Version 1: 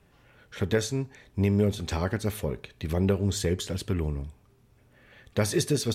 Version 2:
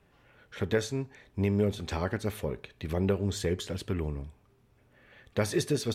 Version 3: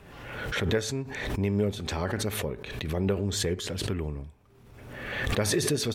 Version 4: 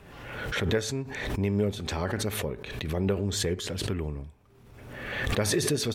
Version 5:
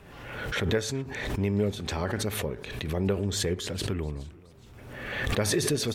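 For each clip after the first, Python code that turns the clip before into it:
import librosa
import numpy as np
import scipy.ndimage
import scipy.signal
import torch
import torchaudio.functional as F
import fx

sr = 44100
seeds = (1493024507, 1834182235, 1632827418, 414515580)

y1 = fx.bass_treble(x, sr, bass_db=-3, treble_db=-5)
y1 = y1 * librosa.db_to_amplitude(-1.5)
y2 = fx.pre_swell(y1, sr, db_per_s=40.0)
y3 = y2
y4 = fx.echo_warbled(y3, sr, ms=423, feedback_pct=47, rate_hz=2.8, cents=206, wet_db=-23.0)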